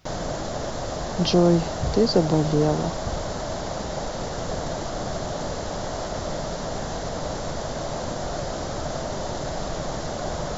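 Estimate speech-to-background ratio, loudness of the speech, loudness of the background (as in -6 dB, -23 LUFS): 8.0 dB, -22.0 LUFS, -30.0 LUFS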